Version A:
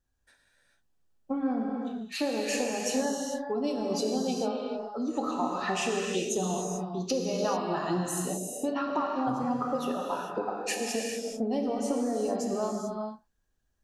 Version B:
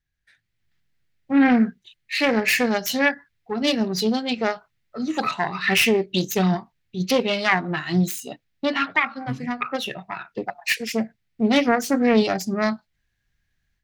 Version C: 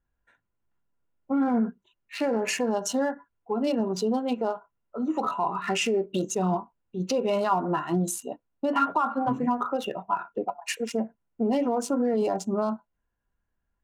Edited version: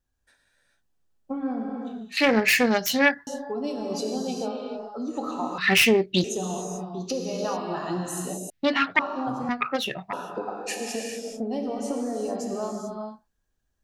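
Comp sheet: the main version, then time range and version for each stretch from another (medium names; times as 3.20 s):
A
2.17–3.27 s: from B
5.58–6.24 s: from B
8.50–8.99 s: from B
9.49–10.13 s: from B
not used: C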